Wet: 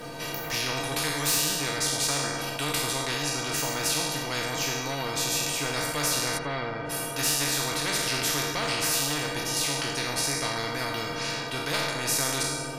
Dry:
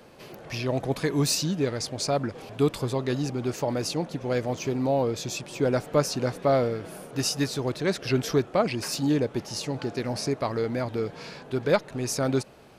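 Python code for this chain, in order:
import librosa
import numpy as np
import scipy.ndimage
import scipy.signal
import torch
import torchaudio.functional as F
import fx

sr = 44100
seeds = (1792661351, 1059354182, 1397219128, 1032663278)

p1 = fx.spec_trails(x, sr, decay_s=0.71)
p2 = fx.stiff_resonator(p1, sr, f0_hz=140.0, decay_s=0.27, stiffness=0.03)
p3 = np.clip(p2, -10.0 ** (-28.0 / 20.0), 10.0 ** (-28.0 / 20.0))
p4 = p2 + (p3 * librosa.db_to_amplitude(-12.0))
p5 = fx.spacing_loss(p4, sr, db_at_10k=32, at=(6.37, 6.89), fade=0.02)
p6 = fx.echo_filtered(p5, sr, ms=79, feedback_pct=81, hz=2400.0, wet_db=-15)
p7 = fx.spectral_comp(p6, sr, ratio=4.0)
y = p7 * librosa.db_to_amplitude(4.0)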